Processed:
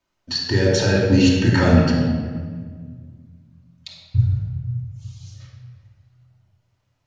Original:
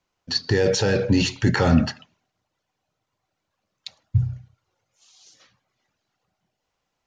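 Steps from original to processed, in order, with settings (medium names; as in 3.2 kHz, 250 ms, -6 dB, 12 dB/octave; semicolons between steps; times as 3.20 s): bucket-brigade echo 75 ms, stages 2048, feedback 73%, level -21 dB; simulated room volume 2000 m³, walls mixed, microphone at 2.7 m; trim -2 dB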